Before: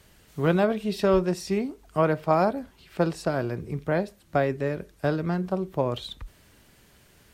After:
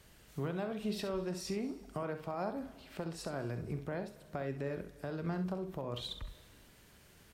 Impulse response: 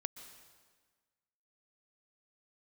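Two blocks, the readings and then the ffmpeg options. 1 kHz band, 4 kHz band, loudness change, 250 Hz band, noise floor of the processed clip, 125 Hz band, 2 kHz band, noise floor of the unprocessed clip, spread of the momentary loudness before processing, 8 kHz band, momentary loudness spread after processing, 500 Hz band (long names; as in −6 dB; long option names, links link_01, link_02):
−15.5 dB, −6.5 dB, −13.5 dB, −12.0 dB, −61 dBFS, −11.5 dB, −14.0 dB, −58 dBFS, 10 LU, −6.0 dB, 7 LU, −14.5 dB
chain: -filter_complex "[0:a]acompressor=threshold=-25dB:ratio=6,alimiter=limit=-23.5dB:level=0:latency=1:release=222,asplit=2[link_01][link_02];[link_02]adelay=43,volume=-13.5dB[link_03];[link_01][link_03]amix=inputs=2:normalize=0,asplit=2[link_04][link_05];[1:a]atrim=start_sample=2205,adelay=66[link_06];[link_05][link_06]afir=irnorm=-1:irlink=0,volume=-8dB[link_07];[link_04][link_07]amix=inputs=2:normalize=0,volume=-4.5dB"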